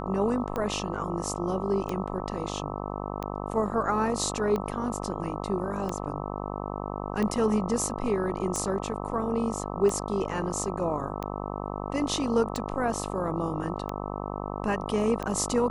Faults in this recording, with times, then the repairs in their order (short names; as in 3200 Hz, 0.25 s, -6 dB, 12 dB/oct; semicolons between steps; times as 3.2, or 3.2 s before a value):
buzz 50 Hz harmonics 26 -34 dBFS
tick 45 rpm -18 dBFS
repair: de-click; de-hum 50 Hz, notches 26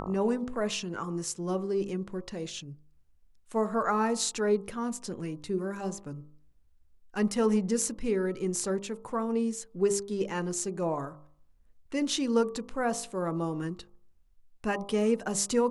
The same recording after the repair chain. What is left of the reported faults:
none